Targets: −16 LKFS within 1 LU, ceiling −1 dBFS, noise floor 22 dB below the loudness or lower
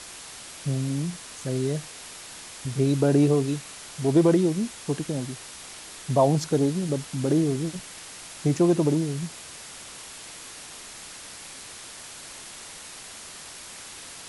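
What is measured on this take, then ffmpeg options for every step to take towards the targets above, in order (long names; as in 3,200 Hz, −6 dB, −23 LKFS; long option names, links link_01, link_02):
background noise floor −42 dBFS; target noise floor −47 dBFS; integrated loudness −25.0 LKFS; sample peak −9.0 dBFS; target loudness −16.0 LKFS
→ -af "afftdn=noise_reduction=6:noise_floor=-42"
-af "volume=9dB,alimiter=limit=-1dB:level=0:latency=1"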